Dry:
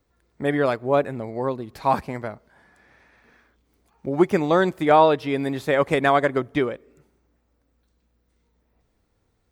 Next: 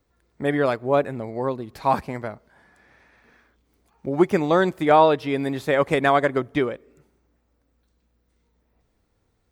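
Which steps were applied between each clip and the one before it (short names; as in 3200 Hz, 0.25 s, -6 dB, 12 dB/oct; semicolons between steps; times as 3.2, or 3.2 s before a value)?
nothing audible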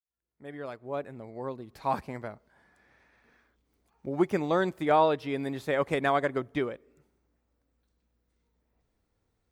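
opening faded in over 2.13 s; gain -7.5 dB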